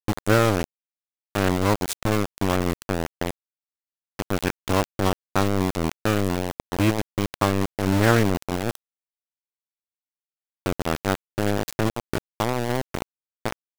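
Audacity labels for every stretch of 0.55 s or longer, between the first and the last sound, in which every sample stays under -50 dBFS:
0.640000	1.350000	silence
3.310000	4.190000	silence
8.750000	10.660000	silence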